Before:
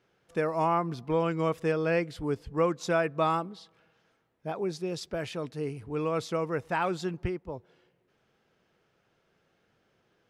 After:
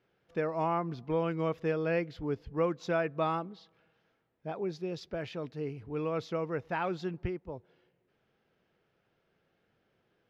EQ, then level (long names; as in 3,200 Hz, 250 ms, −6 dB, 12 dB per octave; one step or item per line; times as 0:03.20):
moving average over 5 samples
parametric band 1,100 Hz −2.5 dB
−3.0 dB